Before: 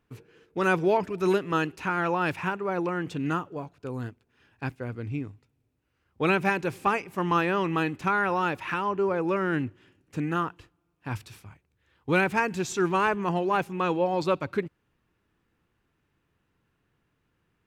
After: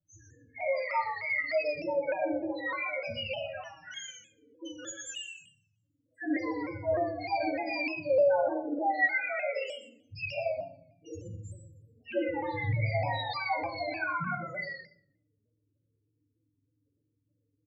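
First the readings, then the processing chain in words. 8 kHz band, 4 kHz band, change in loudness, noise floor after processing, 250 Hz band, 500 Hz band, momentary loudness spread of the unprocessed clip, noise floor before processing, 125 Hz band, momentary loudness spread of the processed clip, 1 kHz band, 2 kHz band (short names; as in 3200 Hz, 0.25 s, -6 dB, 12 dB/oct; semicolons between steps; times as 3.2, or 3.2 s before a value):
-2.0 dB, -0.5 dB, -4.0 dB, -78 dBFS, -8.5 dB, -3.0 dB, 13 LU, -75 dBFS, -5.5 dB, 17 LU, -6.5 dB, -3.0 dB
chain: spectrum mirrored in octaves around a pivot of 890 Hz; in parallel at +2 dB: compressor, threshold -39 dBFS, peak gain reduction 18 dB; on the sum: loudest bins only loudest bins 2; on a send: echo 0.12 s -6 dB; on the sum: shoebox room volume 110 m³, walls mixed, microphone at 1.1 m; shaped vibrato saw down 3.3 Hz, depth 100 cents; gain -5.5 dB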